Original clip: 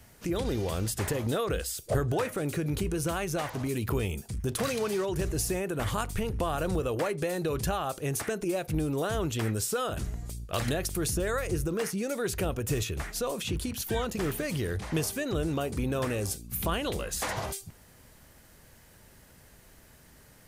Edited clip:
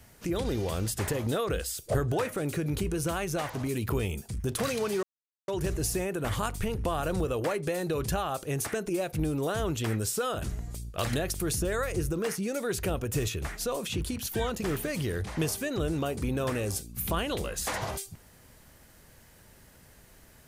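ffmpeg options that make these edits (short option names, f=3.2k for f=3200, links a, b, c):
-filter_complex "[0:a]asplit=2[a][b];[a]atrim=end=5.03,asetpts=PTS-STARTPTS,afade=t=out:st=5.026:d=0.004:c=hsin,apad=pad_dur=0.45[c];[b]atrim=start=5.03,asetpts=PTS-STARTPTS,afade=t=in:d=0.004:c=hsin[d];[c][d]concat=n=2:v=0:a=1"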